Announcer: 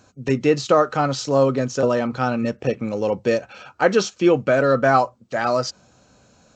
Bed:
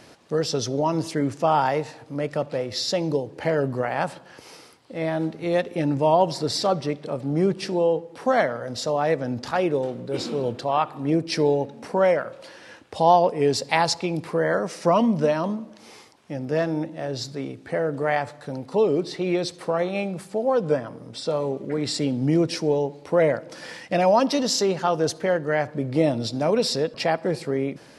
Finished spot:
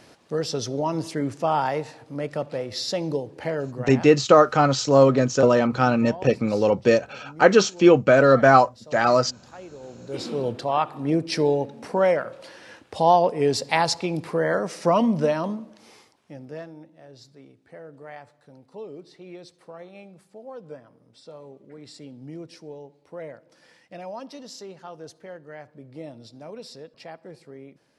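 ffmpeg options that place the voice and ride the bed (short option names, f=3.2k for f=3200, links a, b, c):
-filter_complex "[0:a]adelay=3600,volume=2dB[a];[1:a]volume=16.5dB,afade=t=out:st=3.3:d=0.89:silence=0.141254,afade=t=in:st=9.78:d=0.62:silence=0.112202,afade=t=out:st=15.21:d=1.53:silence=0.133352[b];[a][b]amix=inputs=2:normalize=0"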